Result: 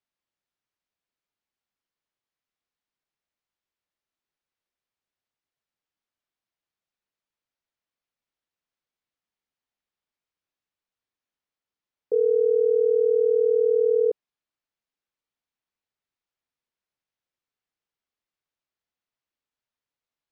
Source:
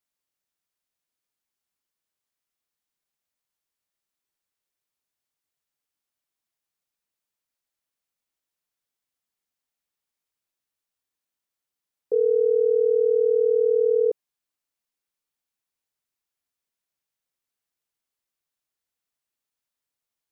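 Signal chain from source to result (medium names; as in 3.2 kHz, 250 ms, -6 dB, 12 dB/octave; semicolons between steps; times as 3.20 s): distance through air 130 m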